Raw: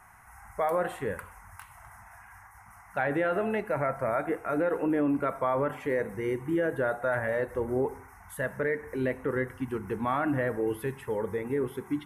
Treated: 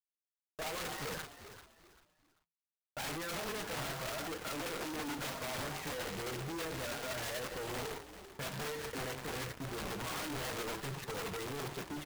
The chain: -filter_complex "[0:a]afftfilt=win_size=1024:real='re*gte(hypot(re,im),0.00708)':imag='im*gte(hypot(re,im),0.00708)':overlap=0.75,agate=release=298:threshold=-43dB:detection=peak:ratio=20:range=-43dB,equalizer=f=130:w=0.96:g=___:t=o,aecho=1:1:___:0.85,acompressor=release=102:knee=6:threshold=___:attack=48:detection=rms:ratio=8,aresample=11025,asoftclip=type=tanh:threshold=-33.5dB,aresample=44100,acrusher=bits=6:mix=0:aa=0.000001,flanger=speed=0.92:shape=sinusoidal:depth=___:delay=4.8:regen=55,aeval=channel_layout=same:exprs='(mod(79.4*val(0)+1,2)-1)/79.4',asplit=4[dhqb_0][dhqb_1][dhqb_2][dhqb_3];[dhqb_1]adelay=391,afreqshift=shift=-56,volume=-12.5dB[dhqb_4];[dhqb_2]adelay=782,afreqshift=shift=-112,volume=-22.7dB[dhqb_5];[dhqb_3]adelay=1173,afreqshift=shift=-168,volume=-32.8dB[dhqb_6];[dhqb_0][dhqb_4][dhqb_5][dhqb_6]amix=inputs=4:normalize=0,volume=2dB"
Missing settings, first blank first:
2.5, 6.4, -29dB, 9.8